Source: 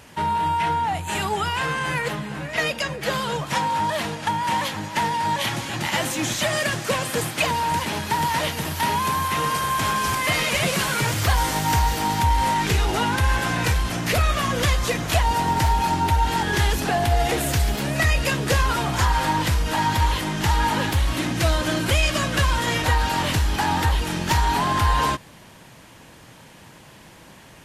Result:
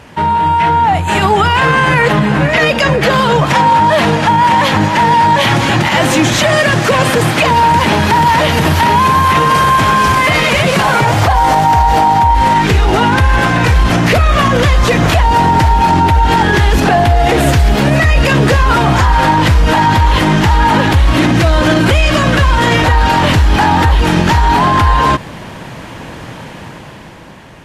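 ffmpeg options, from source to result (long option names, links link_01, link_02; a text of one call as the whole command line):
ffmpeg -i in.wav -filter_complex "[0:a]asettb=1/sr,asplit=3[link_01][link_02][link_03];[link_01]atrim=end=10.794[link_04];[link_02]atrim=start=10.79:end=12.35,asetpts=PTS-STARTPTS,afade=type=in:duration=0.004:curve=qsin,afade=type=out:start_time=1.556:duration=0.004:curve=qsin,equalizer=frequency=780:width_type=o:width=0.73:gain=11.5[link_05];[link_03]atrim=start=12.346[link_06];[link_04][link_05]acrossfade=duration=0.004:curve1=hsin:curve2=qsin[link_07];[link_07][link_06]acrossfade=duration=0.004:curve1=qsin:curve2=hsin,lowpass=frequency=2300:poles=1,dynaudnorm=framelen=190:gausssize=13:maxgain=11.5dB,alimiter=level_in=12dB:limit=-1dB:release=50:level=0:latency=1,volume=-1dB" out.wav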